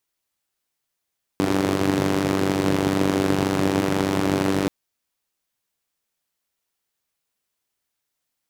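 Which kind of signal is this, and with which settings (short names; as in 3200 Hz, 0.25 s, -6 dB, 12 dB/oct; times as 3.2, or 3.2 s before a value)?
four-cylinder engine model, steady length 3.28 s, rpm 2900, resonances 160/290 Hz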